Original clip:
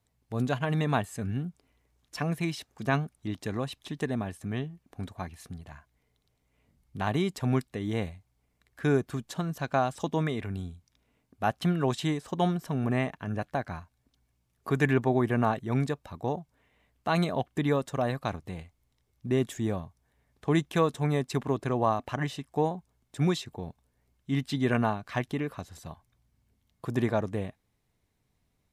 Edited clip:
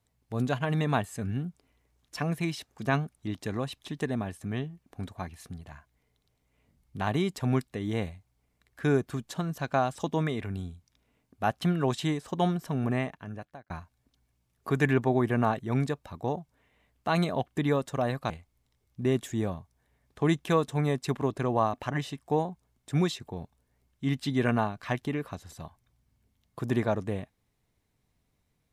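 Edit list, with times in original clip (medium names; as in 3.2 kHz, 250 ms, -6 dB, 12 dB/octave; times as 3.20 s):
12.85–13.70 s: fade out
18.30–18.56 s: delete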